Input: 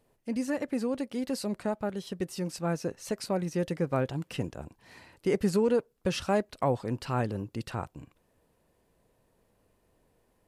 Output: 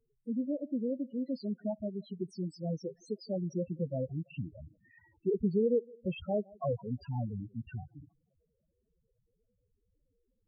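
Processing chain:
on a send: tape delay 164 ms, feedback 44%, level −23 dB, low-pass 3,500 Hz
on the sum: spectral peaks only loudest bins 4
level −2 dB

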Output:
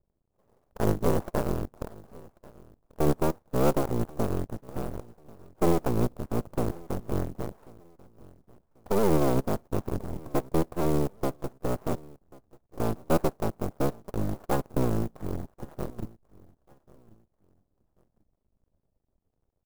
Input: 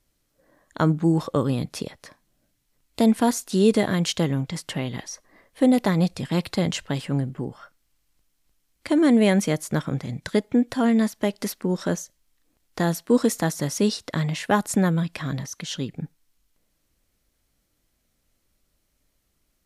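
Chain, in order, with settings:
sub-harmonics by changed cycles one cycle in 3, inverted
inverse Chebyshev low-pass filter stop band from 2,100 Hz, stop band 50 dB
parametric band 290 Hz −3.5 dB 0.26 octaves
half-wave rectification
on a send: repeating echo 1,089 ms, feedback 30%, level −23 dB
on the sum: converter with an unsteady clock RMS 0.039 ms

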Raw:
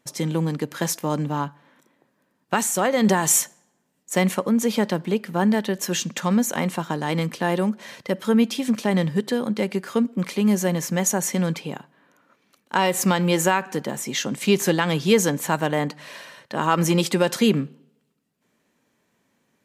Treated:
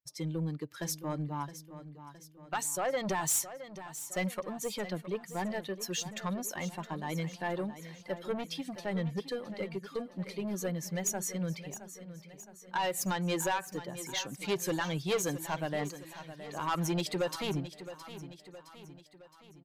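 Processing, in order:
spectral dynamics exaggerated over time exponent 1.5
soft clipping −19.5 dBFS, distortion −11 dB
parametric band 230 Hz −14.5 dB 0.29 octaves
repeating echo 666 ms, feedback 52%, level −13 dB
level −5 dB

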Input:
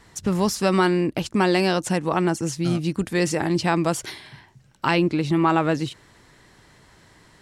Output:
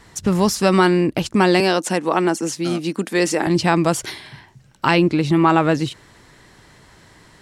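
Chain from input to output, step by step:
0:01.60–0:03.47: high-pass filter 210 Hz 24 dB per octave
level +4.5 dB

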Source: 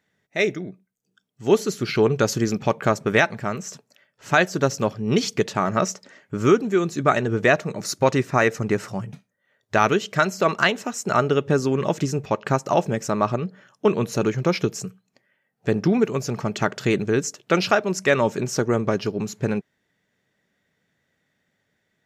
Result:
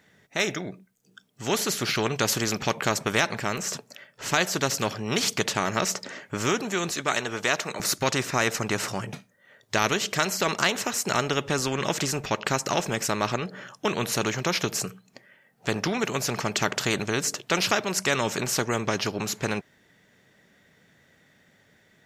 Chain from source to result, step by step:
0:06.91–0:07.80: high-pass filter 810 Hz 6 dB per octave
every bin compressed towards the loudest bin 2 to 1
level −2 dB

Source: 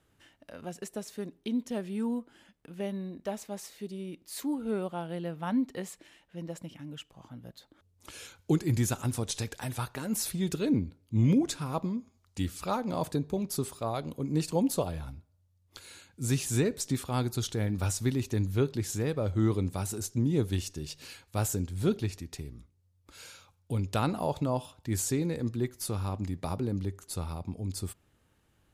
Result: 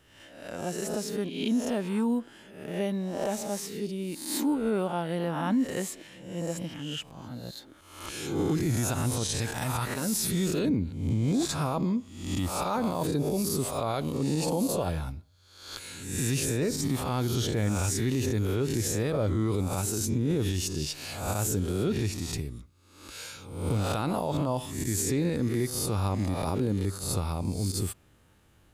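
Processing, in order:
peak hold with a rise ahead of every peak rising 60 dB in 0.74 s
0:16.49–0:17.57: parametric band 8,000 Hz −6 dB 1.6 octaves
brickwall limiter −24.5 dBFS, peak gain reduction 11 dB
level +5 dB

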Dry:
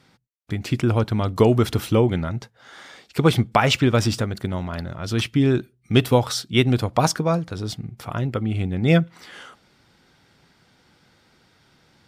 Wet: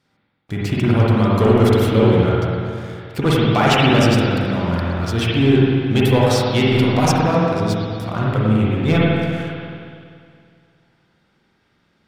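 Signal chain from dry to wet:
leveller curve on the samples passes 2
spring reverb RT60 2.3 s, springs 46/51 ms, chirp 75 ms, DRR −6 dB
level −7 dB

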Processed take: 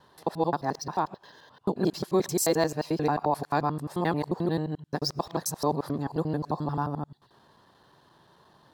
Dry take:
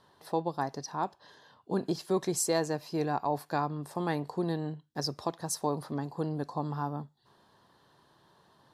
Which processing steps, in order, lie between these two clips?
reversed piece by piece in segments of 88 ms
linearly interpolated sample-rate reduction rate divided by 2×
level +4.5 dB

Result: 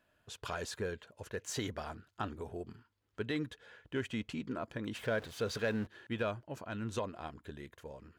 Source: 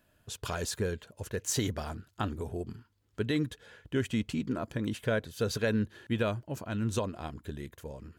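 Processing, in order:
0:04.95–0:05.87: converter with a step at zero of −40.5 dBFS
mid-hump overdrive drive 8 dB, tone 2,500 Hz, clips at −17 dBFS
level −4.5 dB

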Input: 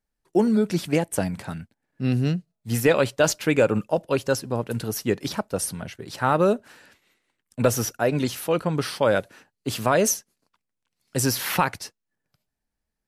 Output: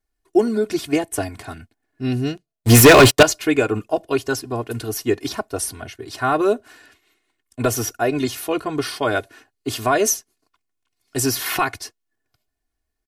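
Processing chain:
comb filter 2.8 ms, depth 96%
0:02.37–0:03.23: leveller curve on the samples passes 5

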